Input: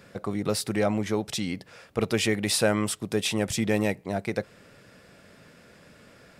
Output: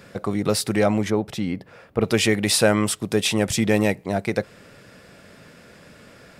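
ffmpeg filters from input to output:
-filter_complex "[0:a]asettb=1/sr,asplit=3[s0][s1][s2];[s0]atrim=end=1.104[s3];[s1]atrim=start=1.1:end=2.05,asetpts=PTS-STARTPTS,afade=t=in:d=0.004:c=qsin,afade=t=out:st=0.946:d=0.004:c=qsin,equalizer=f=7200:w=0.37:g=-13.5[s4];[s2]atrim=start=2.046[s5];[s3][s4]acrossfade=d=0.004:c1=hsin:c2=qsin[s6];[s6][s5]acrossfade=d=0.004:c1=qsin:c2=hsin,volume=1.88"

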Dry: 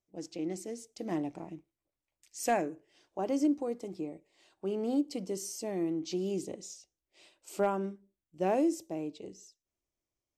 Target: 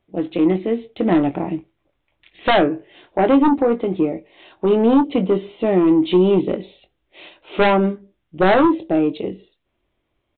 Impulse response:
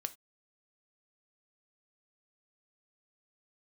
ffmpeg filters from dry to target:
-filter_complex "[0:a]aresample=8000,aeval=exprs='0.112*sin(PI/2*2.24*val(0)/0.112)':c=same,aresample=44100,asplit=2[s0][s1];[s1]adelay=22,volume=0.316[s2];[s0][s2]amix=inputs=2:normalize=0,volume=2.82"

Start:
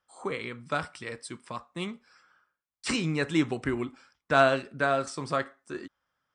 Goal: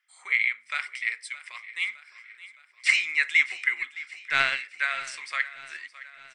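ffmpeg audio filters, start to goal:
-filter_complex "[0:a]highpass=f=2100:t=q:w=9,asettb=1/sr,asplit=3[s0][s1][s2];[s0]atrim=end=3.764[s3];[s1]atrim=start=3.76:end=4.64,asetpts=PTS-STARTPTS,afade=t=in:d=0.004:c=qsin,afade=t=out:st=0.876:d=0.004:c=qsin,aeval=exprs='0.501*(cos(1*acos(clip(val(0)/0.501,-1,1)))-cos(1*PI/2))+0.0708*(cos(2*acos(clip(val(0)/0.501,-1,1)))-cos(2*PI/2))':c=same[s4];[s2]atrim=start=4.636[s5];[s3][s4]acrossfade=d=0.004:c1=hsin:c2=qsin[s6];[s6][s5]acrossfade=d=0.004:c1=qsin:c2=hsin,asplit=2[s7][s8];[s8]aecho=0:1:615|1230|1845|2460|3075:0.141|0.0777|0.0427|0.0235|0.0129[s9];[s7][s9]amix=inputs=2:normalize=0"

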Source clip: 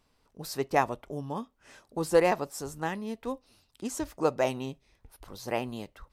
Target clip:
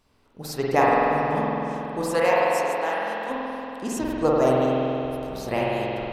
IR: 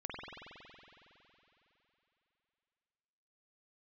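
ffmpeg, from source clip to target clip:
-filter_complex "[0:a]asplit=3[s0][s1][s2];[s0]afade=t=out:st=2.01:d=0.02[s3];[s1]highpass=600,afade=t=in:st=2.01:d=0.02,afade=t=out:st=3.29:d=0.02[s4];[s2]afade=t=in:st=3.29:d=0.02[s5];[s3][s4][s5]amix=inputs=3:normalize=0,asettb=1/sr,asplit=3[s6][s7][s8];[s6]atrim=end=4.214[s9];[s7]atrim=start=4.21:end=4.62,asetpts=PTS-STARTPTS,afade=t=in:d=0.004:c=qsin,afade=t=out:st=0.406:d=0.004:c=qsin,equalizer=f=2300:t=o:w=0.97:g=-9[s10];[s8]atrim=start=4.616[s11];[s9][s10]acrossfade=d=0.004:c1=hsin:c2=qsin[s12];[s12][s11]acrossfade=d=0.004:c1=qsin:c2=hsin[s13];[1:a]atrim=start_sample=2205[s14];[s13][s14]afir=irnorm=-1:irlink=0,volume=2.51"

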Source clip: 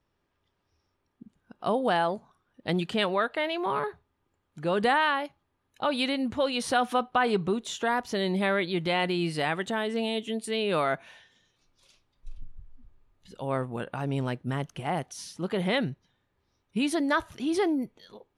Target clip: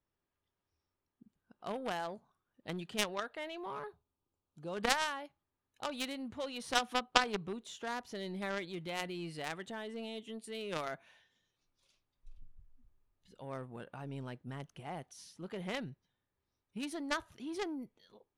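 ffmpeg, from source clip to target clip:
-filter_complex "[0:a]aeval=exprs='0.266*(cos(1*acos(clip(val(0)/0.266,-1,1)))-cos(1*PI/2))+0.133*(cos(3*acos(clip(val(0)/0.266,-1,1)))-cos(3*PI/2))+0.0335*(cos(5*acos(clip(val(0)/0.266,-1,1)))-cos(5*PI/2))':c=same,asettb=1/sr,asplit=3[s0][s1][s2];[s0]atrim=end=3.884[s3];[s1]atrim=start=3.88:end=4.75,asetpts=PTS-STARTPTS,afade=t=in:d=0.004:c=qsin,afade=t=out:st=0.866:d=0.004:c=qsin,equalizer=f=1900:w=2.4:g=-14.5[s4];[s2]atrim=start=4.746[s5];[s3][s4]acrossfade=d=0.004:c1=hsin:c2=qsin[s6];[s6][s5]acrossfade=d=0.004:c1=qsin:c2=hsin,volume=1.88"

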